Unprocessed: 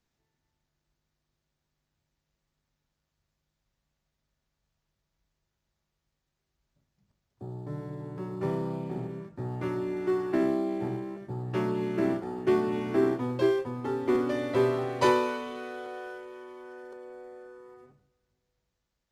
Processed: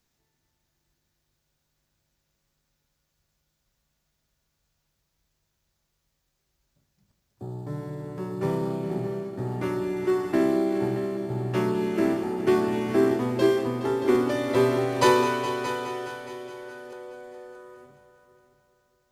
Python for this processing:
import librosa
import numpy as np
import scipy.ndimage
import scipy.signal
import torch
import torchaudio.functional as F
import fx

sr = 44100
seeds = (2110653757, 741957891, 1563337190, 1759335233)

p1 = fx.high_shelf(x, sr, hz=5500.0, db=9.0)
p2 = p1 + fx.echo_heads(p1, sr, ms=209, heads='all three', feedback_pct=45, wet_db=-14.5, dry=0)
y = p2 * librosa.db_to_amplitude(3.5)